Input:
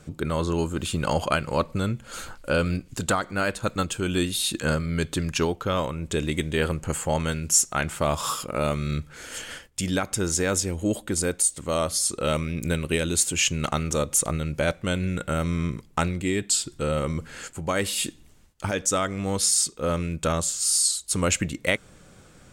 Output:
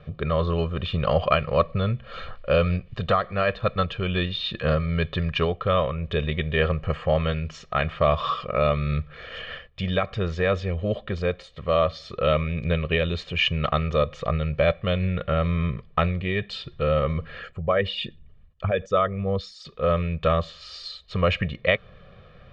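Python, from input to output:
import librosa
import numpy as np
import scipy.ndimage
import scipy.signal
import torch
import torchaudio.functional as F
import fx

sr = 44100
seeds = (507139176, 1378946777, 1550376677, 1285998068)

y = fx.envelope_sharpen(x, sr, power=1.5, at=(17.39, 19.65))
y = scipy.signal.sosfilt(scipy.signal.butter(6, 3700.0, 'lowpass', fs=sr, output='sos'), y)
y = y + 0.85 * np.pad(y, (int(1.7 * sr / 1000.0), 0))[:len(y)]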